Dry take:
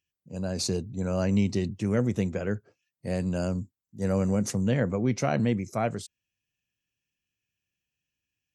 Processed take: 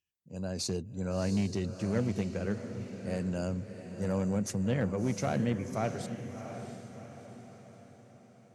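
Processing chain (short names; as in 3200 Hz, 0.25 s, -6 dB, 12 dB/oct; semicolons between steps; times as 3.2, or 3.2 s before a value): one-sided clip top -19 dBFS, bottom -15 dBFS; on a send: diffused feedback echo 0.691 s, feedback 48%, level -9 dB; on the sum: gain -5 dB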